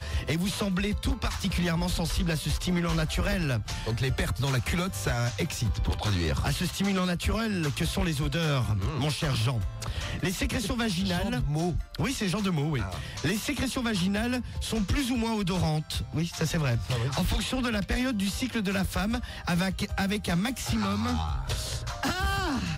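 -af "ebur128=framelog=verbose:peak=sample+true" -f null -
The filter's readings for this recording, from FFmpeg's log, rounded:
Integrated loudness:
  I:         -28.8 LUFS
  Threshold: -38.8 LUFS
Loudness range:
  LRA:         1.1 LU
  Threshold: -48.8 LUFS
  LRA low:   -29.2 LUFS
  LRA high:  -28.1 LUFS
Sample peak:
  Peak:      -18.1 dBFS
True peak:
  Peak:      -18.1 dBFS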